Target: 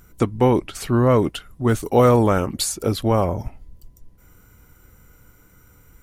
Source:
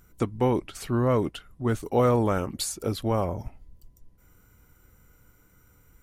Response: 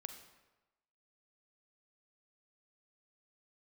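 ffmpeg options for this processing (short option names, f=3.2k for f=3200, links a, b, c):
-filter_complex "[0:a]asettb=1/sr,asplit=3[a][b][c];[a]atrim=end=1.294[d];[b]atrim=start=1.29:end=2.26,asetpts=PTS-STARTPTS,afade=t=in:d=0.004:c=qsin,afade=t=out:st=0.966:d=0.004:c=qsin,highshelf=f=5k:g=4.5[e];[c]atrim=start=2.256[f];[d][e]acrossfade=d=0.004:c1=hsin:c2=qsin[g];[g][f]acrossfade=d=0.004:c1=qsin:c2=hsin,volume=7dB"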